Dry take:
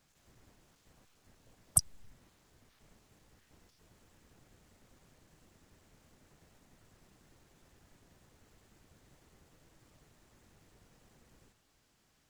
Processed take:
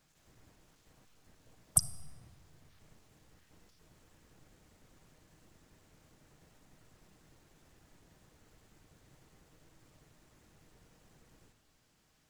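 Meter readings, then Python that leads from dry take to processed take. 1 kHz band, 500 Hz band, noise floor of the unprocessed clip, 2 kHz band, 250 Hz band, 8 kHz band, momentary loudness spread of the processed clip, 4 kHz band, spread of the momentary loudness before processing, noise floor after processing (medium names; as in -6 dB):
0.0 dB, 0.0 dB, -72 dBFS, +0.5 dB, +1.0 dB, 0.0 dB, 11 LU, +0.5 dB, 0 LU, -71 dBFS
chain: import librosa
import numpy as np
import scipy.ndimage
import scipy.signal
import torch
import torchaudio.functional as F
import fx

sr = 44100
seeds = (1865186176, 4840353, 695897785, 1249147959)

y = fx.room_shoebox(x, sr, seeds[0], volume_m3=3000.0, walls='mixed', distance_m=0.54)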